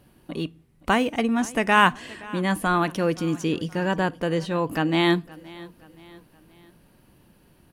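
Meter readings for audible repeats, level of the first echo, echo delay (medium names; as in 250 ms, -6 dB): 3, -21.0 dB, 522 ms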